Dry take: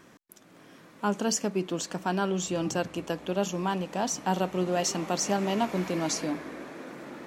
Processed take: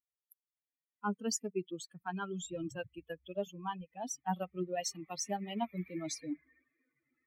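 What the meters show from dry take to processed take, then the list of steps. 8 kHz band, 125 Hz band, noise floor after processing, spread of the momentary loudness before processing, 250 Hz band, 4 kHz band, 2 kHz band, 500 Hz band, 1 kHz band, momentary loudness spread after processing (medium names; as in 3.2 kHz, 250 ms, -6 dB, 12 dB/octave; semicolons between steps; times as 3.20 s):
-9.0 dB, -11.0 dB, under -85 dBFS, 7 LU, -10.0 dB, -10.0 dB, -10.5 dB, -10.5 dB, -9.5 dB, 7 LU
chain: expander on every frequency bin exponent 3; trim -3.5 dB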